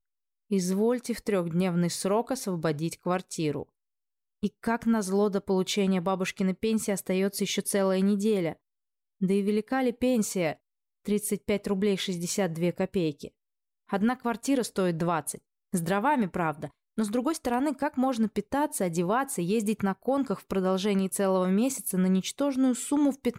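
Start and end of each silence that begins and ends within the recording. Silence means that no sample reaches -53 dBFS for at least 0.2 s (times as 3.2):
3.64–4.42
8.56–9.21
10.57–11.05
13.28–13.89
15.38–15.73
16.71–16.97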